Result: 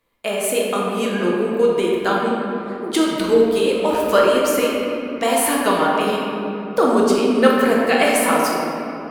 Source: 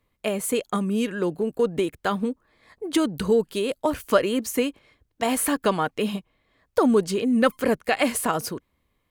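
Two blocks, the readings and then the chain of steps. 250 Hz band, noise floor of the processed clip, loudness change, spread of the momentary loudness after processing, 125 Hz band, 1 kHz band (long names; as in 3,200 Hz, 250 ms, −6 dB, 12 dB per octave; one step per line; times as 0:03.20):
+4.5 dB, −29 dBFS, +6.0 dB, 9 LU, +2.0 dB, +8.5 dB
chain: low-shelf EQ 230 Hz −12 dB
rectangular room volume 150 cubic metres, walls hard, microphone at 0.67 metres
level +3 dB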